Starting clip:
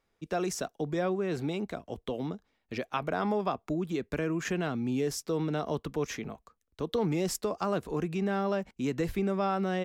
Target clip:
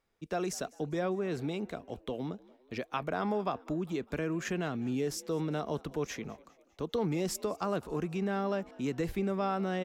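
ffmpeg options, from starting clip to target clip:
ffmpeg -i in.wav -filter_complex "[0:a]asplit=5[link_01][link_02][link_03][link_04][link_05];[link_02]adelay=201,afreqshift=60,volume=-23dB[link_06];[link_03]adelay=402,afreqshift=120,volume=-28.5dB[link_07];[link_04]adelay=603,afreqshift=180,volume=-34dB[link_08];[link_05]adelay=804,afreqshift=240,volume=-39.5dB[link_09];[link_01][link_06][link_07][link_08][link_09]amix=inputs=5:normalize=0,volume=-2.5dB" out.wav

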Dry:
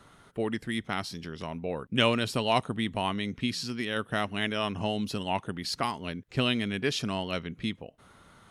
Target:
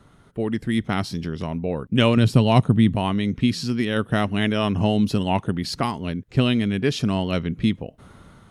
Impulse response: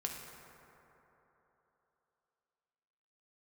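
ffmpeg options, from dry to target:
-filter_complex "[0:a]lowshelf=frequency=430:gain=10.5,dynaudnorm=framelen=250:gausssize=5:maxgain=8dB,asettb=1/sr,asplit=3[link_01][link_02][link_03];[link_01]atrim=end=2.174[link_04];[link_02]atrim=start=2.17:end=2.96,asetpts=PTS-STARTPTS,afade=type=in:duration=0.004:curve=qsin,afade=type=out:start_time=0.786:duration=0.004:curve=qsin,equalizer=frequency=130:width=0.73:gain=8[link_05];[link_03]atrim=start=2.956[link_06];[link_04][link_05]acrossfade=duration=0.004:curve1=hsin:curve2=qsin[link_07];[link_07][link_06]acrossfade=duration=0.004:curve1=qsin:curve2=hsin,volume=-3dB"

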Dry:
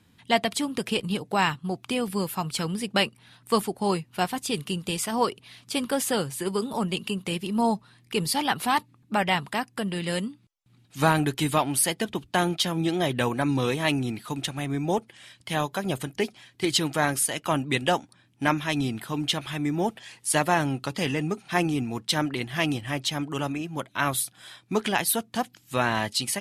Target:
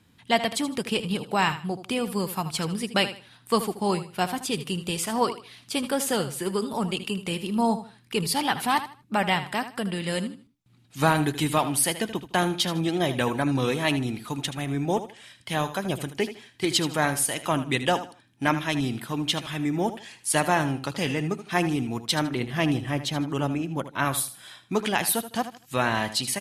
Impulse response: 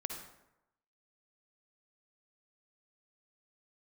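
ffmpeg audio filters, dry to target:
-filter_complex "[0:a]asettb=1/sr,asplit=3[link_01][link_02][link_03];[link_01]atrim=end=22.314[link_04];[link_02]atrim=start=22.31:end=24.05,asetpts=PTS-STARTPTS,afade=type=in:duration=0.004:curve=qsin,afade=type=out:start_time=1.736:duration=0.004:curve=qsin,tiltshelf=frequency=1100:gain=3.5[link_05];[link_03]atrim=start=24.046[link_06];[link_04][link_05]acrossfade=duration=0.004:curve1=hsin:curve2=qsin[link_07];[link_07][link_06]acrossfade=duration=0.004:curve1=qsin:curve2=hsin,aecho=1:1:78|156|234:0.237|0.0617|0.016"

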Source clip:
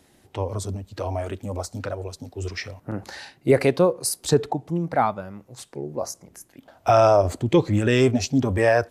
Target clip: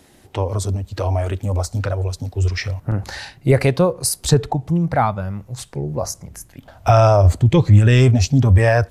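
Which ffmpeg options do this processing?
ffmpeg -i in.wav -filter_complex "[0:a]asubboost=boost=7.5:cutoff=110,asplit=2[link_01][link_02];[link_02]acompressor=threshold=-26dB:ratio=6,volume=-1dB[link_03];[link_01][link_03]amix=inputs=2:normalize=0,volume=1.5dB" out.wav

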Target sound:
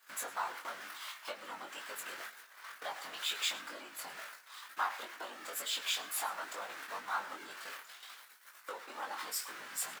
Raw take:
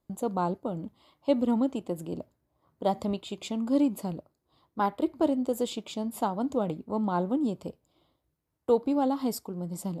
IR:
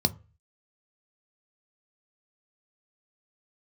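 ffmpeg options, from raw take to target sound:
-filter_complex "[0:a]aeval=exprs='val(0)+0.5*0.0168*sgn(val(0))':channel_layout=same,afftfilt=real='hypot(re,im)*cos(2*PI*random(0))':imag='hypot(re,im)*sin(2*PI*random(1))':win_size=512:overlap=0.75,acompressor=threshold=-35dB:ratio=5,agate=range=-24dB:threshold=-45dB:ratio=16:detection=peak,flanger=delay=9.2:depth=8.7:regen=87:speed=0.84:shape=sinusoidal,highpass=frequency=1500:width_type=q:width=2.4,flanger=delay=19:depth=3.5:speed=2.1,asplit=2[link_01][link_02];[link_02]aecho=0:1:107:0.126[link_03];[link_01][link_03]amix=inputs=2:normalize=0,volume=15.5dB"

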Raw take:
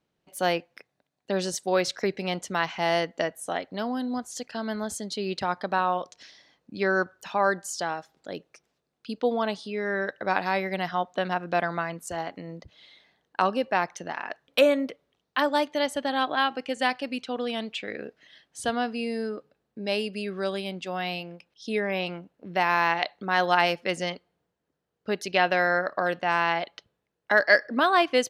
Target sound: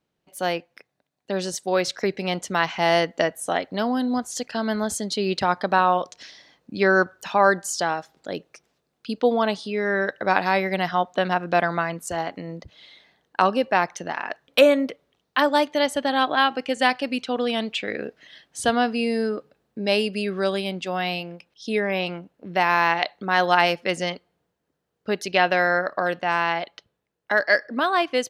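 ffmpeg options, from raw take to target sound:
ffmpeg -i in.wav -af "dynaudnorm=framelen=220:gausssize=21:maxgain=7dB" out.wav

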